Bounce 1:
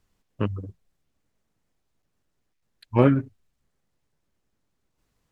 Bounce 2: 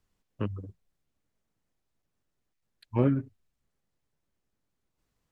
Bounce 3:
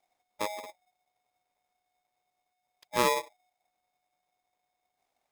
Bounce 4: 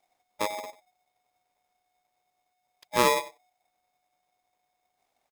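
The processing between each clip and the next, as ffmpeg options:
ffmpeg -i in.wav -filter_complex "[0:a]acrossover=split=460[link_01][link_02];[link_02]acompressor=threshold=-33dB:ratio=2[link_03];[link_01][link_03]amix=inputs=2:normalize=0,volume=-5.5dB" out.wav
ffmpeg -i in.wav -af "aeval=exprs='val(0)*sgn(sin(2*PI*730*n/s))':channel_layout=same,volume=-2dB" out.wav
ffmpeg -i in.wav -af "aecho=1:1:93:0.141,volume=3.5dB" out.wav

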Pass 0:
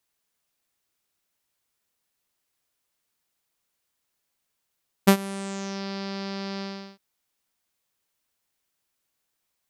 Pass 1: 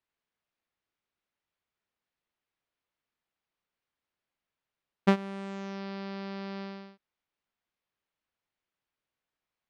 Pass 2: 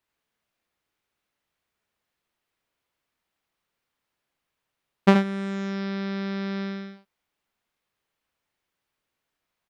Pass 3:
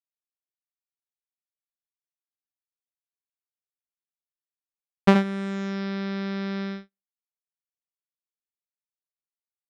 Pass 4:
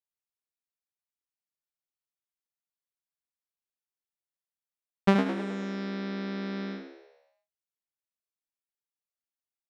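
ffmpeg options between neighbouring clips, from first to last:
ffmpeg -i in.wav -af "lowpass=3000,volume=-5dB" out.wav
ffmpeg -i in.wav -af "aecho=1:1:62|76:0.158|0.473,volume=6.5dB" out.wav
ffmpeg -i in.wav -af "agate=range=-50dB:threshold=-33dB:ratio=16:detection=peak" out.wav
ffmpeg -i in.wav -filter_complex "[0:a]asplit=7[link_01][link_02][link_03][link_04][link_05][link_06][link_07];[link_02]adelay=105,afreqshift=72,volume=-9dB[link_08];[link_03]adelay=210,afreqshift=144,volume=-15.2dB[link_09];[link_04]adelay=315,afreqshift=216,volume=-21.4dB[link_10];[link_05]adelay=420,afreqshift=288,volume=-27.6dB[link_11];[link_06]adelay=525,afreqshift=360,volume=-33.8dB[link_12];[link_07]adelay=630,afreqshift=432,volume=-40dB[link_13];[link_01][link_08][link_09][link_10][link_11][link_12][link_13]amix=inputs=7:normalize=0,volume=-5dB" out.wav

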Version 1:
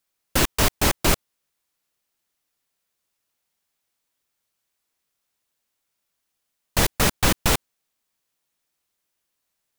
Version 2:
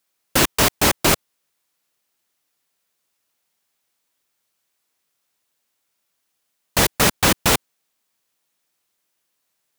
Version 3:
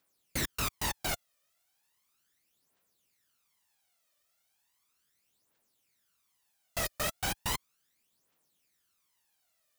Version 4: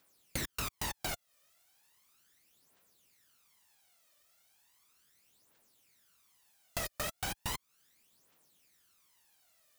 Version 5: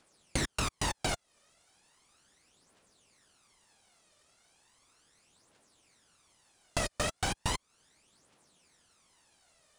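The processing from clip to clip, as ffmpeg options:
ffmpeg -i in.wav -af "highpass=frequency=130:poles=1,volume=4.5dB" out.wav
ffmpeg -i in.wav -af "asoftclip=type=tanh:threshold=-15.5dB,alimiter=level_in=1dB:limit=-24dB:level=0:latency=1:release=31,volume=-1dB,aphaser=in_gain=1:out_gain=1:delay=1.7:decay=0.66:speed=0.36:type=triangular,volume=-5dB" out.wav
ffmpeg -i in.wav -af "acompressor=threshold=-42dB:ratio=5,volume=6.5dB" out.wav
ffmpeg -i in.wav -filter_complex "[0:a]aresample=22050,aresample=44100,asplit=2[link_01][link_02];[link_02]acrusher=samples=17:mix=1:aa=0.000001:lfo=1:lforange=10.2:lforate=4,volume=-8dB[link_03];[link_01][link_03]amix=inputs=2:normalize=0,volume=4.5dB" out.wav

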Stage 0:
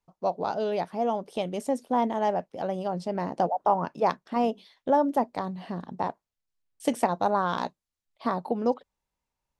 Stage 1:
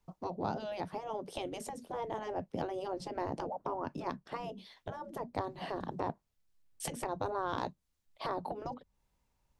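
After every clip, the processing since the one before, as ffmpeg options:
ffmpeg -i in.wav -filter_complex "[0:a]lowshelf=frequency=290:gain=7.5,acrossover=split=240[link_01][link_02];[link_02]acompressor=threshold=-36dB:ratio=5[link_03];[link_01][link_03]amix=inputs=2:normalize=0,afftfilt=real='re*lt(hypot(re,im),0.1)':imag='im*lt(hypot(re,im),0.1)':win_size=1024:overlap=0.75,volume=4dB" out.wav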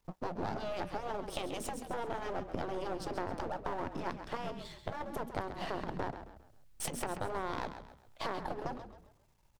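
ffmpeg -i in.wav -filter_complex "[0:a]aeval=exprs='if(lt(val(0),0),0.251*val(0),val(0))':channel_layout=same,acompressor=threshold=-43dB:ratio=2.5,asplit=2[link_01][link_02];[link_02]asplit=4[link_03][link_04][link_05][link_06];[link_03]adelay=134,afreqshift=-35,volume=-10dB[link_07];[link_04]adelay=268,afreqshift=-70,volume=-18.4dB[link_08];[link_05]adelay=402,afreqshift=-105,volume=-26.8dB[link_09];[link_06]adelay=536,afreqshift=-140,volume=-35.2dB[link_10];[link_07][link_08][link_09][link_10]amix=inputs=4:normalize=0[link_11];[link_01][link_11]amix=inputs=2:normalize=0,volume=8dB" out.wav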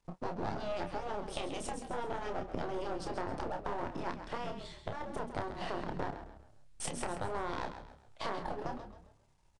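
ffmpeg -i in.wav -filter_complex "[0:a]asplit=2[link_01][link_02];[link_02]adelay=29,volume=-6.5dB[link_03];[link_01][link_03]amix=inputs=2:normalize=0,aresample=22050,aresample=44100,volume=-1dB" out.wav

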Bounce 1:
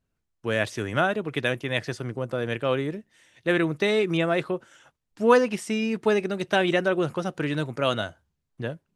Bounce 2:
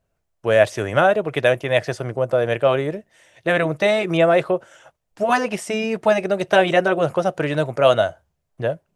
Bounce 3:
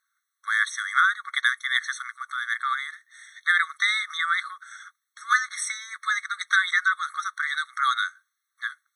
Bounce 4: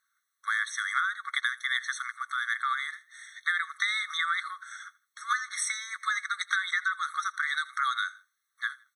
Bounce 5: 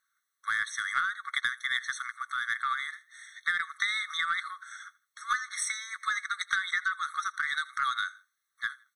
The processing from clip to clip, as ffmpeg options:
ffmpeg -i in.wav -af "afftfilt=real='re*lt(hypot(re,im),0.708)':imag='im*lt(hypot(re,im),0.708)':win_size=1024:overlap=0.75,equalizer=frequency=250:width_type=o:width=0.67:gain=-6,equalizer=frequency=630:width_type=o:width=0.67:gain=11,equalizer=frequency=4000:width_type=o:width=0.67:gain=-3,volume=5dB" out.wav
ffmpeg -i in.wav -filter_complex "[0:a]asplit=2[link_01][link_02];[link_02]acompressor=threshold=-24dB:ratio=6,volume=3dB[link_03];[link_01][link_03]amix=inputs=2:normalize=0,afftfilt=real='re*eq(mod(floor(b*sr/1024/1100),2),1)':imag='im*eq(mod(floor(b*sr/1024/1100),2),1)':win_size=1024:overlap=0.75" out.wav
ffmpeg -i in.wav -af "acompressor=threshold=-25dB:ratio=6,aecho=1:1:82|164:0.0891|0.0276" out.wav
ffmpeg -i in.wav -af "aeval=exprs='0.266*(cos(1*acos(clip(val(0)/0.266,-1,1)))-cos(1*PI/2))+0.0106*(cos(2*acos(clip(val(0)/0.266,-1,1)))-cos(2*PI/2))+0.00841*(cos(3*acos(clip(val(0)/0.266,-1,1)))-cos(3*PI/2))+0.0015*(cos(5*acos(clip(val(0)/0.266,-1,1)))-cos(5*PI/2))+0.00376*(cos(7*acos(clip(val(0)/0.266,-1,1)))-cos(7*PI/2))':channel_layout=same" out.wav

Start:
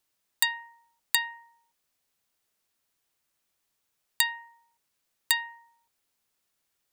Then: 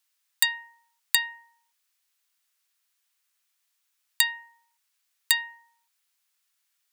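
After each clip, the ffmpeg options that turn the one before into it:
ffmpeg -i in.wav -af "highpass=1300,volume=3dB" out.wav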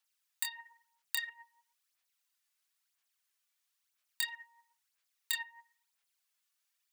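ffmpeg -i in.wav -af "flanger=delay=22.5:depth=6:speed=0.43,acompressor=threshold=-33dB:ratio=2,aphaser=in_gain=1:out_gain=1:delay=3.5:decay=0.55:speed=1:type=sinusoidal,volume=-4.5dB" out.wav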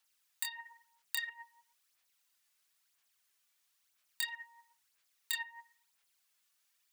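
ffmpeg -i in.wav -af "alimiter=limit=-21.5dB:level=0:latency=1:release=283,volume=5dB" out.wav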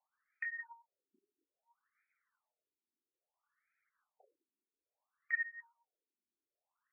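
ffmpeg -i in.wav -af "afftfilt=real='re*between(b*sr/1024,280*pow(1800/280,0.5+0.5*sin(2*PI*0.6*pts/sr))/1.41,280*pow(1800/280,0.5+0.5*sin(2*PI*0.6*pts/sr))*1.41)':imag='im*between(b*sr/1024,280*pow(1800/280,0.5+0.5*sin(2*PI*0.6*pts/sr))/1.41,280*pow(1800/280,0.5+0.5*sin(2*PI*0.6*pts/sr))*1.41)':win_size=1024:overlap=0.75,volume=5.5dB" out.wav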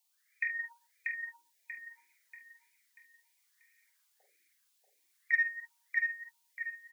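ffmpeg -i in.wav -filter_complex "[0:a]asplit=2[link_01][link_02];[link_02]adelay=48,volume=-6dB[link_03];[link_01][link_03]amix=inputs=2:normalize=0,aecho=1:1:637|1274|1911|2548|3185:0.708|0.276|0.108|0.042|0.0164,aexciter=amount=10.3:drive=6.4:freq=2000,volume=-5.5dB" out.wav

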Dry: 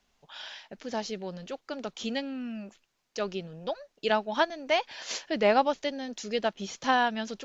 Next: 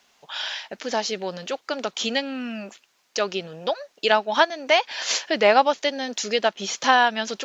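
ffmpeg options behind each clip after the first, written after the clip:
ffmpeg -i in.wav -filter_complex "[0:a]highpass=frequency=600:poles=1,asplit=2[link_01][link_02];[link_02]acompressor=threshold=-37dB:ratio=6,volume=-0.5dB[link_03];[link_01][link_03]amix=inputs=2:normalize=0,volume=7.5dB" out.wav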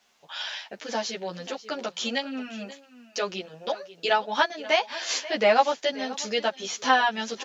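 ffmpeg -i in.wav -filter_complex "[0:a]aecho=1:1:536:0.141,asplit=2[link_01][link_02];[link_02]adelay=10.8,afreqshift=1.1[link_03];[link_01][link_03]amix=inputs=2:normalize=1,volume=-1dB" out.wav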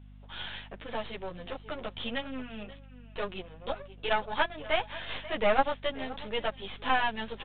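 ffmpeg -i in.wav -af "aeval=exprs='if(lt(val(0),0),0.251*val(0),val(0))':channel_layout=same,aeval=exprs='val(0)+0.00447*(sin(2*PI*50*n/s)+sin(2*PI*2*50*n/s)/2+sin(2*PI*3*50*n/s)/3+sin(2*PI*4*50*n/s)/4+sin(2*PI*5*50*n/s)/5)':channel_layout=same,aresample=8000,aresample=44100,volume=-2dB" out.wav

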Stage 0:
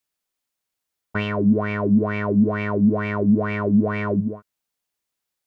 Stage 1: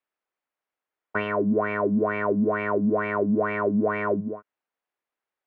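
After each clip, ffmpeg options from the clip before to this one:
ffmpeg -i in.wav -filter_complex "[0:a]acrossover=split=290 2400:gain=0.178 1 0.0794[link_01][link_02][link_03];[link_01][link_02][link_03]amix=inputs=3:normalize=0,volume=2dB" out.wav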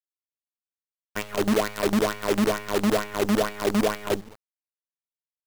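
ffmpeg -i in.wav -af "agate=range=-33dB:threshold=-19dB:ratio=3:detection=peak,acrusher=bits=5:dc=4:mix=0:aa=0.000001,volume=2dB" out.wav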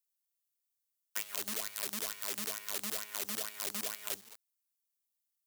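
ffmpeg -i in.wav -filter_complex "[0:a]aderivative,acrossover=split=200[link_01][link_02];[link_02]acompressor=threshold=-42dB:ratio=3[link_03];[link_01][link_03]amix=inputs=2:normalize=0,volume=8dB" out.wav

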